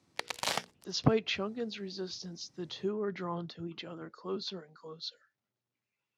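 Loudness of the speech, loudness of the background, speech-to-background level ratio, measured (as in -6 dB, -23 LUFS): -36.5 LUFS, -35.5 LUFS, -1.0 dB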